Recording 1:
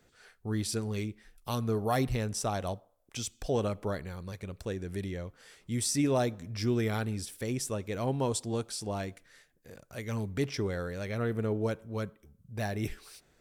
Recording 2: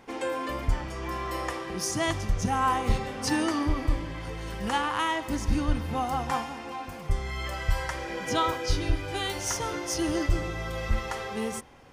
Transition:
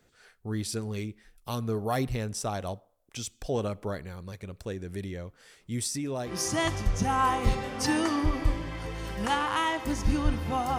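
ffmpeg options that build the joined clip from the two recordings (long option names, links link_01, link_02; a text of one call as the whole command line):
ffmpeg -i cue0.wav -i cue1.wav -filter_complex "[0:a]asettb=1/sr,asplit=3[link_01][link_02][link_03];[link_01]atrim=end=5.874[link_04];[link_02]atrim=start=5.87:end=6.37,asetpts=PTS-STARTPTS,afade=type=in:duration=0.004:curve=qsin,afade=type=out:start_time=0.496:duration=0.004:curve=qsin,acompressor=threshold=-29dB:ratio=5:attack=3.2:release=140:knee=1:detection=peak[link_05];[link_03]atrim=start=6.366[link_06];[link_04][link_05]acrossfade=duration=0.004:curve1=hsin:curve2=qsin[link_07];[link_07][link_06]acrossfade=duration=0.004:curve1=qsin:curve2=hsin,apad=whole_dur=10.78,atrim=end=10.78,atrim=end=6.37,asetpts=PTS-STARTPTS[link_08];[1:a]atrim=start=1.64:end=6.21,asetpts=PTS-STARTPTS[link_09];[link_08][link_09]acrossfade=duration=0.16:curve1=tri:curve2=tri" out.wav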